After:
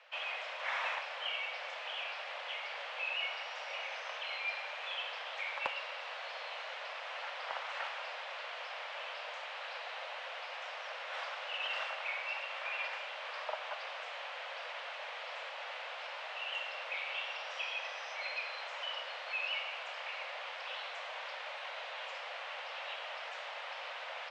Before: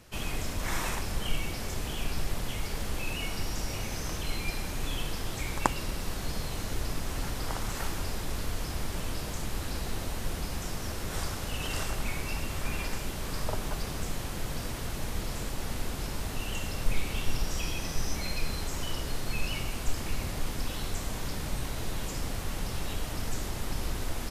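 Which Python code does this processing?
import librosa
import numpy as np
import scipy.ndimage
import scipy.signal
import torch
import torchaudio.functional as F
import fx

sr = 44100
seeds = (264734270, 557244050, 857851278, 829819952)

y = scipy.signal.sosfilt(scipy.signal.butter(12, 520.0, 'highpass', fs=sr, output='sos'), x)
y = 10.0 ** (-23.5 / 20.0) * np.tanh(y / 10.0 ** (-23.5 / 20.0))
y = fx.ladder_lowpass(y, sr, hz=3500.0, resonance_pct=35)
y = F.gain(torch.from_numpy(y), 6.0).numpy()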